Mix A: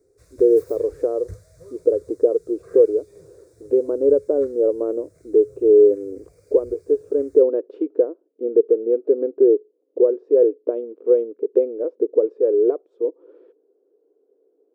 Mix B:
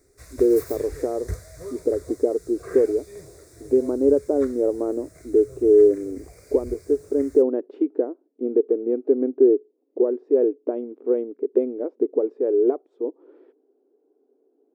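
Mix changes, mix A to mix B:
background +10.5 dB; master: add graphic EQ with 31 bands 100 Hz -8 dB, 160 Hz -8 dB, 250 Hz +12 dB, 500 Hz -9 dB, 800 Hz +7 dB, 2 kHz +6 dB, 12.5 kHz +4 dB

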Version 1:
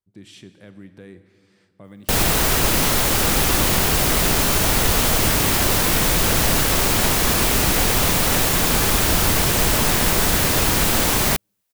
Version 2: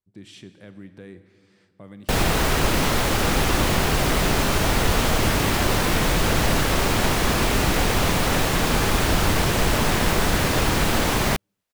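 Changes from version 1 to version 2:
background: add treble shelf 4.4 kHz -7.5 dB; master: add treble shelf 10 kHz -6 dB

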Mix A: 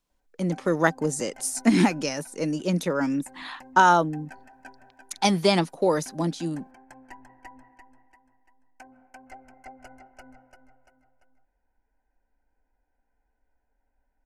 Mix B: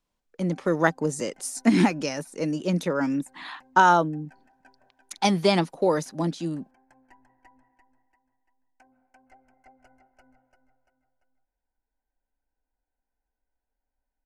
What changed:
background -10.5 dB; master: add treble shelf 6.4 kHz -6 dB

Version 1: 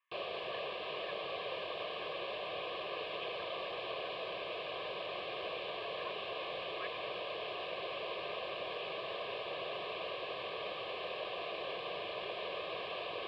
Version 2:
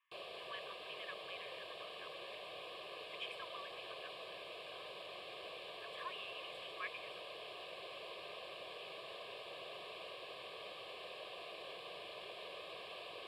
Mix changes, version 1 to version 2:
background -10.5 dB; master: remove distance through air 190 m

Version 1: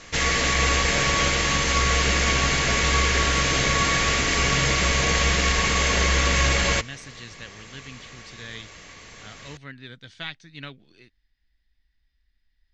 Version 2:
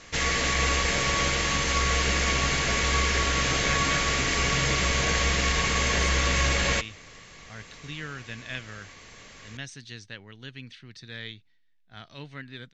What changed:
speech: entry +2.70 s; background -3.5 dB

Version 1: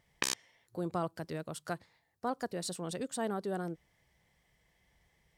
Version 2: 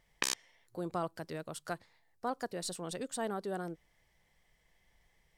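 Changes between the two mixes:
speech: remove high-pass 60 Hz; master: add bass shelf 260 Hz -5.5 dB

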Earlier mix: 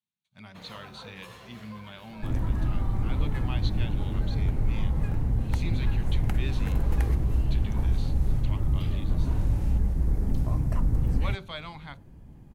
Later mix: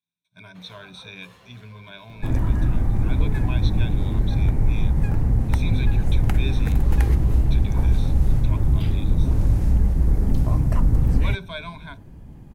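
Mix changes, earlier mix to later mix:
speech: add rippled EQ curve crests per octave 1.6, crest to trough 18 dB; first sound -4.5 dB; second sound +6.5 dB

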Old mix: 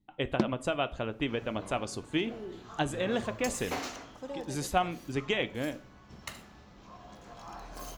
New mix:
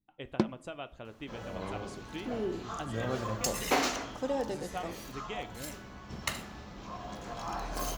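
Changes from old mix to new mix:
speech -11.5 dB; second sound +8.0 dB

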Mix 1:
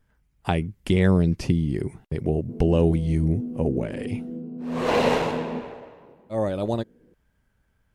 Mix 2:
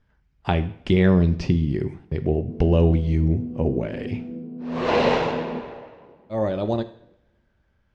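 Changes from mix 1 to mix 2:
speech: send on; master: add low-pass 5.6 kHz 24 dB/octave

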